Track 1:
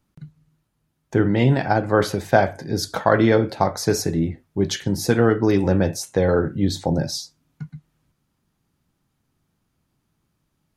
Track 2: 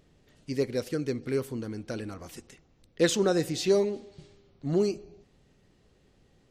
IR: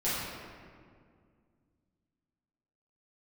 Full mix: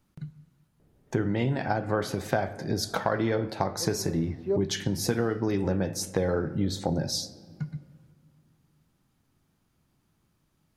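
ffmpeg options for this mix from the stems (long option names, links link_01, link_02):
-filter_complex "[0:a]acompressor=threshold=-25dB:ratio=4,volume=0dB,asplit=3[link_01][link_02][link_03];[link_02]volume=-24dB[link_04];[1:a]lowpass=1100,adelay=800,volume=-1.5dB[link_05];[link_03]apad=whole_len=322140[link_06];[link_05][link_06]sidechaincompress=threshold=-44dB:ratio=8:attack=16:release=226[link_07];[2:a]atrim=start_sample=2205[link_08];[link_04][link_08]afir=irnorm=-1:irlink=0[link_09];[link_01][link_07][link_09]amix=inputs=3:normalize=0"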